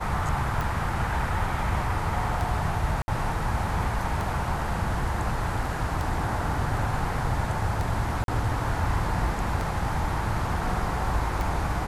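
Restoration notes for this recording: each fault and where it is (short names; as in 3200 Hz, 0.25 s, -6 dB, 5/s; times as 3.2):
tick 33 1/3 rpm
3.02–3.08 gap 60 ms
8.24–8.28 gap 42 ms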